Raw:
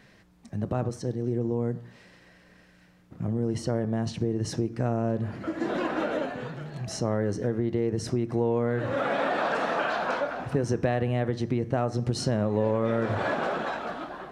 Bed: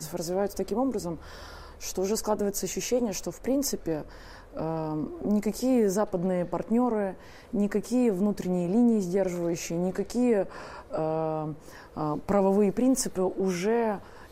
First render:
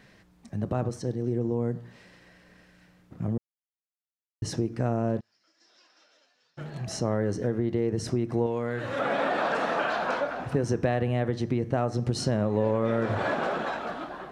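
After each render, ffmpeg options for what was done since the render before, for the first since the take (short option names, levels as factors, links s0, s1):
-filter_complex "[0:a]asplit=3[s0][s1][s2];[s0]afade=t=out:st=5.19:d=0.02[s3];[s1]bandpass=f=5300:t=q:w=9.7,afade=t=in:st=5.19:d=0.02,afade=t=out:st=6.57:d=0.02[s4];[s2]afade=t=in:st=6.57:d=0.02[s5];[s3][s4][s5]amix=inputs=3:normalize=0,asettb=1/sr,asplit=3[s6][s7][s8];[s6]atrim=end=8.464[s9];[s7]atrim=start=8.46:end=8.99,asetpts=PTS-STARTPTS,afade=t=in:d=0.004:c=qsin,afade=t=out:st=0.526:d=0.004:c=qsin,tiltshelf=f=1500:g=-5[s10];[s8]atrim=start=8.986[s11];[s9][s10]acrossfade=d=0.004:c1=hsin:c2=qsin[s12];[s12][s11]acrossfade=d=0.004:c1=qsin:c2=hsin,asplit=3[s13][s14][s15];[s13]atrim=end=3.38,asetpts=PTS-STARTPTS,afade=t=out:st=3.376:d=0.004:c=hsin[s16];[s14]atrim=start=3.38:end=4.42,asetpts=PTS-STARTPTS,volume=0[s17];[s15]atrim=start=4.42,asetpts=PTS-STARTPTS,afade=t=in:d=0.004:c=hsin[s18];[s16][s17][s18]concat=n=3:v=0:a=1"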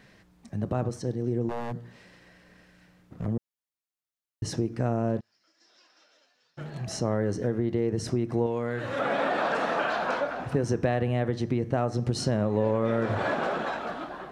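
-filter_complex "[0:a]asettb=1/sr,asplit=3[s0][s1][s2];[s0]atrim=end=1.494[s3];[s1]atrim=start=1.49:end=3.26,asetpts=PTS-STARTPTS,afade=t=in:d=0.004:c=qsin,afade=t=out:st=1.766:d=0.004:c=qsin,aeval=exprs='0.0501*(abs(mod(val(0)/0.0501+3,4)-2)-1)':c=same[s4];[s2]atrim=start=3.256[s5];[s3][s4]acrossfade=d=0.004:c1=hsin:c2=qsin[s6];[s6][s5]acrossfade=d=0.004:c1=qsin:c2=hsin"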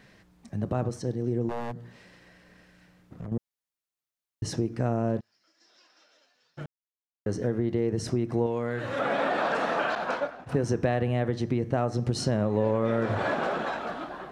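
-filter_complex "[0:a]asettb=1/sr,asplit=3[s0][s1][s2];[s0]atrim=end=1.714[s3];[s1]atrim=start=1.71:end=3.32,asetpts=PTS-STARTPTS,afade=t=in:d=0.004:c=qsin,afade=t=out:st=1.606:d=0.004:c=qsin,acompressor=threshold=0.0158:ratio=3:attack=3.2:release=140:knee=1:detection=peak[s4];[s2]atrim=start=3.316[s5];[s3][s4]acrossfade=d=0.004:c1=hsin:c2=qsin[s6];[s6][s5]acrossfade=d=0.004:c1=qsin:c2=hsin,asettb=1/sr,asplit=3[s7][s8][s9];[s7]atrim=end=9.954[s10];[s8]atrim=start=9.95:end=10.49,asetpts=PTS-STARTPTS,afade=t=in:d=0.004:c=qsin,afade=t=out:st=0.536:d=0.004:c=qsin,agate=range=0.0224:threshold=0.0447:ratio=3:release=100:detection=peak[s11];[s9]atrim=start=10.486[s12];[s10][s11]acrossfade=d=0.004:c1=hsin:c2=qsin[s13];[s13][s12]acrossfade=d=0.004:c1=qsin:c2=hsin,asplit=3[s14][s15][s16];[s14]atrim=end=6.66,asetpts=PTS-STARTPTS,afade=t=out:st=6.656:d=0.004:c=hsin[s17];[s15]atrim=start=6.66:end=7.26,asetpts=PTS-STARTPTS,volume=0[s18];[s16]atrim=start=7.26,asetpts=PTS-STARTPTS,afade=t=in:d=0.004:c=hsin[s19];[s17][s18][s19]concat=n=3:v=0:a=1"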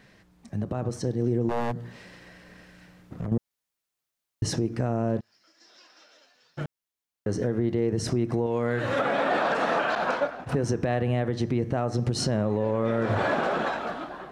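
-af "alimiter=limit=0.0841:level=0:latency=1:release=180,dynaudnorm=f=120:g=13:m=2"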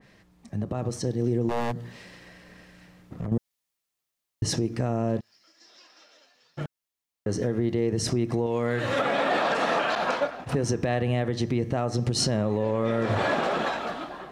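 -af "bandreject=f=1500:w=16,adynamicequalizer=threshold=0.00891:dfrequency=2100:dqfactor=0.7:tfrequency=2100:tqfactor=0.7:attack=5:release=100:ratio=0.375:range=2.5:mode=boostabove:tftype=highshelf"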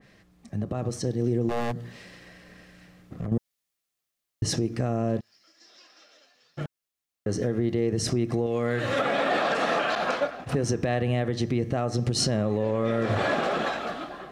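-af "bandreject=f=930:w=8.1"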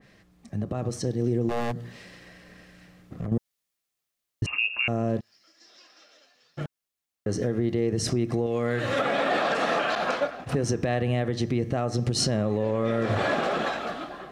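-filter_complex "[0:a]asettb=1/sr,asplit=3[s0][s1][s2];[s0]atrim=end=4.464[s3];[s1]atrim=start=4.46:end=4.88,asetpts=PTS-STARTPTS,afade=t=in:d=0.004:c=qsin,afade=t=out:st=0.416:d=0.004:c=qsin,lowpass=f=2500:t=q:w=0.5098,lowpass=f=2500:t=q:w=0.6013,lowpass=f=2500:t=q:w=0.9,lowpass=f=2500:t=q:w=2.563,afreqshift=-2900[s4];[s2]atrim=start=4.876[s5];[s3][s4]acrossfade=d=0.004:c1=hsin:c2=qsin[s6];[s6][s5]acrossfade=d=0.004:c1=qsin:c2=hsin"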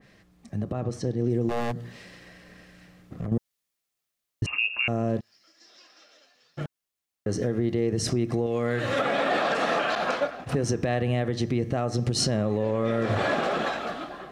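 -filter_complex "[0:a]asettb=1/sr,asplit=3[s0][s1][s2];[s0]atrim=end=0.724[s3];[s1]atrim=start=0.72:end=1.3,asetpts=PTS-STARTPTS,afade=t=in:d=0.004:c=qsin,afade=t=out:st=0.576:d=0.004:c=qsin,lowpass=f=3300:p=1[s4];[s2]atrim=start=1.296[s5];[s3][s4]acrossfade=d=0.004:c1=hsin:c2=qsin[s6];[s6][s5]acrossfade=d=0.004:c1=qsin:c2=hsin"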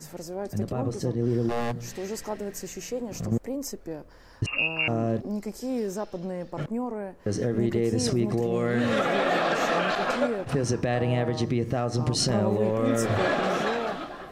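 -filter_complex "[1:a]volume=0.501[s0];[0:a][s0]amix=inputs=2:normalize=0"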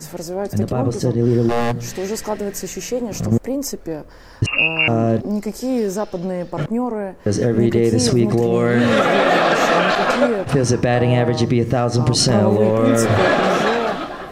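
-af "volume=2.99,alimiter=limit=0.708:level=0:latency=1"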